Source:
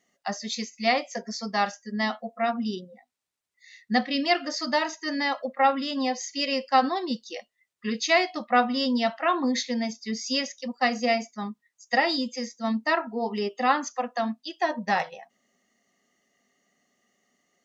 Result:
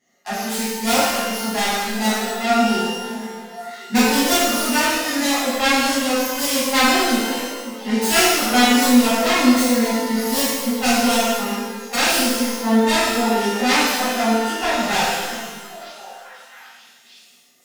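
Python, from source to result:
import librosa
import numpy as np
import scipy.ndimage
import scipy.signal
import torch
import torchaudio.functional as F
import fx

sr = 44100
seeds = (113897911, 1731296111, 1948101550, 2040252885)

y = fx.self_delay(x, sr, depth_ms=0.62)
y = fx.echo_stepped(y, sr, ms=540, hz=220.0, octaves=1.4, feedback_pct=70, wet_db=-11.0)
y = fx.rev_shimmer(y, sr, seeds[0], rt60_s=1.2, semitones=12, shimmer_db=-8, drr_db=-11.0)
y = y * librosa.db_to_amplitude(-3.0)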